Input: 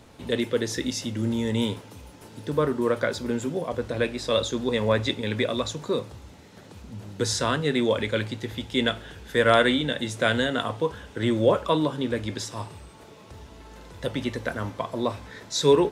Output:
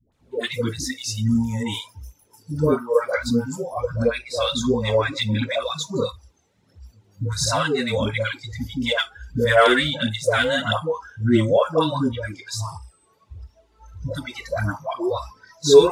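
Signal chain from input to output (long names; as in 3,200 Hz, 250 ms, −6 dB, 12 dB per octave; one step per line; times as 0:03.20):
phase shifter 1.5 Hz, delay 2.9 ms, feedback 52%
all-pass dispersion highs, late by 123 ms, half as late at 560 Hz
noise reduction from a noise print of the clip's start 21 dB
level +3 dB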